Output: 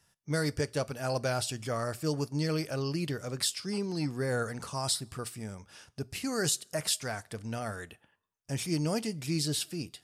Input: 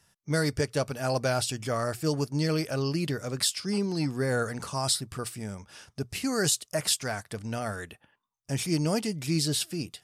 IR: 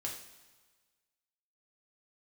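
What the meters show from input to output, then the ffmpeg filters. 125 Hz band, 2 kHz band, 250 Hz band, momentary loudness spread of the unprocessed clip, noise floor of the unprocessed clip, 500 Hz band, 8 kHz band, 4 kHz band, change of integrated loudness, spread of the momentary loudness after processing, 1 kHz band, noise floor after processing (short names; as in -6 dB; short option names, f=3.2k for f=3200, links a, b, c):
-3.5 dB, -4.0 dB, -4.0 dB, 9 LU, -76 dBFS, -3.5 dB, -3.5 dB, -3.5 dB, -3.5 dB, 9 LU, -3.5 dB, -73 dBFS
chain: -filter_complex "[0:a]asplit=2[a][b];[1:a]atrim=start_sample=2205,asetrate=79380,aresample=44100[c];[b][c]afir=irnorm=-1:irlink=0,volume=-11dB[d];[a][d]amix=inputs=2:normalize=0,volume=-4.5dB"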